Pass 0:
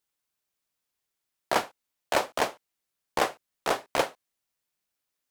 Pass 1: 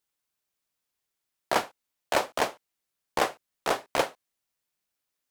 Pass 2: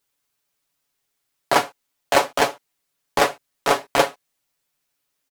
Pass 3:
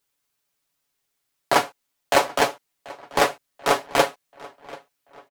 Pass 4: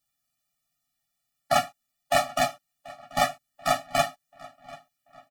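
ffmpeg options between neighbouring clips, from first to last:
-af anull
-af "aecho=1:1:7.1:0.65,volume=6.5dB"
-filter_complex "[0:a]asplit=2[a][b];[b]adelay=736,lowpass=f=4k:p=1,volume=-20.5dB,asplit=2[c][d];[d]adelay=736,lowpass=f=4k:p=1,volume=0.48,asplit=2[e][f];[f]adelay=736,lowpass=f=4k:p=1,volume=0.48,asplit=2[g][h];[h]adelay=736,lowpass=f=4k:p=1,volume=0.48[i];[a][c][e][g][i]amix=inputs=5:normalize=0,volume=-1dB"
-af "afftfilt=real='re*eq(mod(floor(b*sr/1024/280),2),0)':imag='im*eq(mod(floor(b*sr/1024/280),2),0)':win_size=1024:overlap=0.75"

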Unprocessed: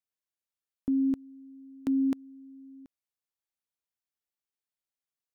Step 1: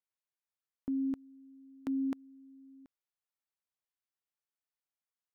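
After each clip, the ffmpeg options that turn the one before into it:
-af "equalizer=f=1.2k:w=0.51:g=6.5,volume=-8dB"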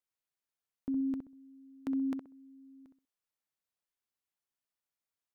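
-filter_complex "[0:a]asplit=2[a][b];[b]adelay=64,lowpass=f=1.2k:p=1,volume=-5dB,asplit=2[c][d];[d]adelay=64,lowpass=f=1.2k:p=1,volume=0.26,asplit=2[e][f];[f]adelay=64,lowpass=f=1.2k:p=1,volume=0.26[g];[a][c][e][g]amix=inputs=4:normalize=0"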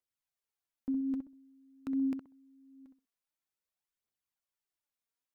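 -af "aphaser=in_gain=1:out_gain=1:delay=4.5:decay=0.47:speed=0.49:type=triangular,volume=-3dB"

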